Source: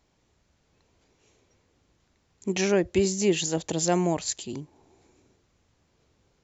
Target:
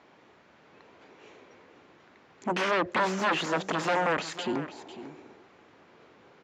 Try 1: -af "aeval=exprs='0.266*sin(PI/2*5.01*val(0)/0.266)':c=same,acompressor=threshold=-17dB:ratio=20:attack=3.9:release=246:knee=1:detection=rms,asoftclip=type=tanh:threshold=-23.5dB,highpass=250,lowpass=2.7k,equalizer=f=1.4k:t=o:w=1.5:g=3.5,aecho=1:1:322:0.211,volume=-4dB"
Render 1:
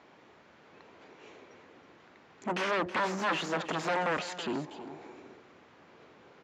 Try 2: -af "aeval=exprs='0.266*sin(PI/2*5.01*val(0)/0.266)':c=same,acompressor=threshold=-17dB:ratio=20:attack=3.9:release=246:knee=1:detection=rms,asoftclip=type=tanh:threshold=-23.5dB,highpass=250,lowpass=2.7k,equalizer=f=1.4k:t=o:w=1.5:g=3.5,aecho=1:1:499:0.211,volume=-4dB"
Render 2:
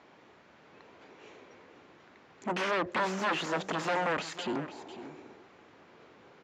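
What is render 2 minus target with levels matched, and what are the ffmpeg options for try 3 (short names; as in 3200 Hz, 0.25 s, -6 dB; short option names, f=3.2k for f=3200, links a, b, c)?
soft clip: distortion +8 dB
-af "aeval=exprs='0.266*sin(PI/2*5.01*val(0)/0.266)':c=same,acompressor=threshold=-17dB:ratio=20:attack=3.9:release=246:knee=1:detection=rms,asoftclip=type=tanh:threshold=-17dB,highpass=250,lowpass=2.7k,equalizer=f=1.4k:t=o:w=1.5:g=3.5,aecho=1:1:499:0.211,volume=-4dB"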